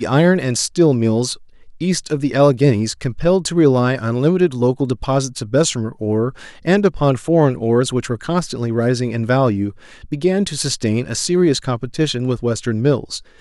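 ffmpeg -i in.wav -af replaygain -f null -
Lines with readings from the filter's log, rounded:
track_gain = -2.9 dB
track_peak = 0.578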